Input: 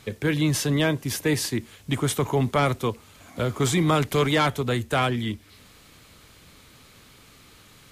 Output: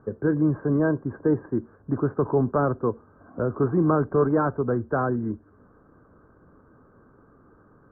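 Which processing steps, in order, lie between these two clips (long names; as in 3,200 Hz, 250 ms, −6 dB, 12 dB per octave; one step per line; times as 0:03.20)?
Chebyshev low-pass with heavy ripple 1,600 Hz, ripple 3 dB
parametric band 330 Hz +5 dB 1.9 octaves
level −1.5 dB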